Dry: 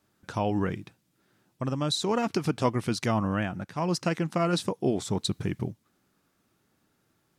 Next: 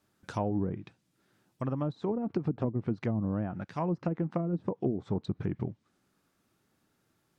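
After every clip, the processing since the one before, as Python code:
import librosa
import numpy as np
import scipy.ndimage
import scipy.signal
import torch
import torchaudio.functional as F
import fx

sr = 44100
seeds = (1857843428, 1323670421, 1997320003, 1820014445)

y = fx.env_lowpass_down(x, sr, base_hz=330.0, full_db=-21.5)
y = F.gain(torch.from_numpy(y), -2.5).numpy()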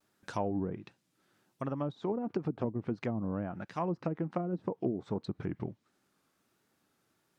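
y = fx.low_shelf(x, sr, hz=170.0, db=-9.0)
y = fx.vibrato(y, sr, rate_hz=1.4, depth_cents=70.0)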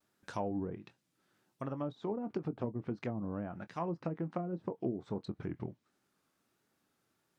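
y = fx.doubler(x, sr, ms=24.0, db=-13.5)
y = F.gain(torch.from_numpy(y), -3.5).numpy()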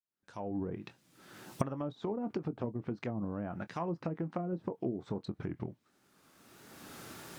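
y = fx.fade_in_head(x, sr, length_s=2.12)
y = fx.recorder_agc(y, sr, target_db=-28.0, rise_db_per_s=23.0, max_gain_db=30)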